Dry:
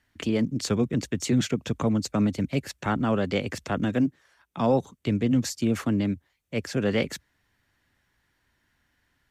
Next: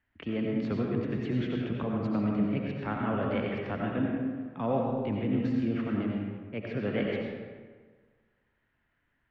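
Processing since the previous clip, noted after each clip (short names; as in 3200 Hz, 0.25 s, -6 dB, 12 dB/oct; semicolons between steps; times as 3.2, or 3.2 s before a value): LPF 2900 Hz 24 dB/oct; reverb RT60 1.5 s, pre-delay 50 ms, DRR -1.5 dB; gain -8 dB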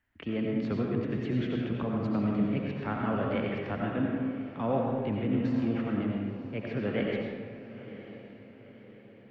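diffused feedback echo 0.968 s, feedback 47%, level -14 dB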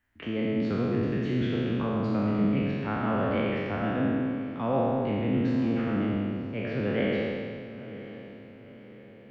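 spectral trails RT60 1.86 s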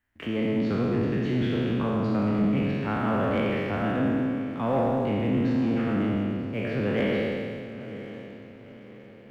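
sample leveller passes 1; gain -1 dB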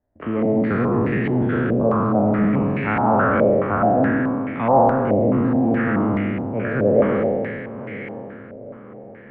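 air absorption 100 m; stepped low-pass 4.7 Hz 610–2100 Hz; gain +5 dB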